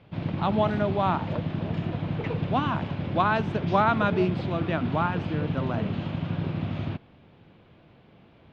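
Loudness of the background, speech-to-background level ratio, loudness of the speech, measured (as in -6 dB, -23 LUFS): -31.0 LUFS, 3.5 dB, -27.5 LUFS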